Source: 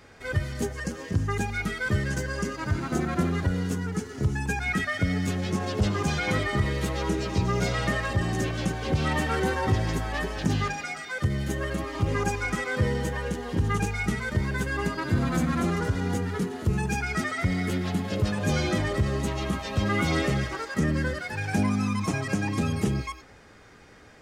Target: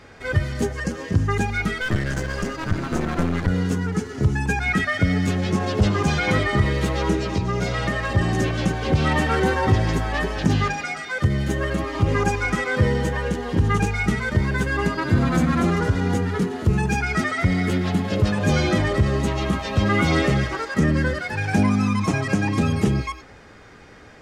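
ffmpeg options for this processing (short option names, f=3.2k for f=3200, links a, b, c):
-filter_complex "[0:a]highshelf=f=7.9k:g=-9,asettb=1/sr,asplit=3[a][b][c];[a]atrim=end=1.814[d];[b]atrim=start=1.81:end=3.48,asetpts=PTS-STARTPTS,afade=t=in:d=0.004:c=qsin,afade=t=out:st=1.666:d=0.004:c=qsin,aeval=exprs='clip(val(0),-1,0.0178)':c=same[e];[c]atrim=start=3.476[f];[d][e]acrossfade=d=0.004:c1=hsin:c2=qsin[g];[g][f]acrossfade=d=0.004:c1=qsin:c2=hsin,asettb=1/sr,asplit=3[h][i][j];[h]atrim=end=7.164[k];[i]atrim=start=7.16:end=8.15,asetpts=PTS-STARTPTS,afade=t=in:d=0.004:c=qsin,afade=t=out:st=0.986:d=0.004:c=qsin,acompressor=threshold=-27dB:ratio=2.5[l];[j]atrim=start=8.146[m];[k][l]acrossfade=d=0.004:c1=hsin:c2=qsin[n];[n][m]acrossfade=d=0.004:c1=qsin:c2=hsin,volume=6dB"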